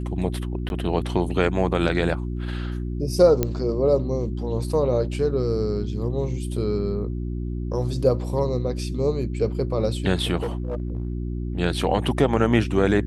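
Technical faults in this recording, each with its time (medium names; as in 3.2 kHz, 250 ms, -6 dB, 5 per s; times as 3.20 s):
hum 60 Hz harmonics 6 -28 dBFS
0.69–0.70 s: dropout 11 ms
3.43 s: pop -8 dBFS
10.36–11.13 s: clipped -22 dBFS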